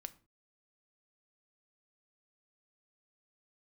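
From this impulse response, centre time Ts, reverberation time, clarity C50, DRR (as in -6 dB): 3 ms, not exponential, 19.0 dB, 12.0 dB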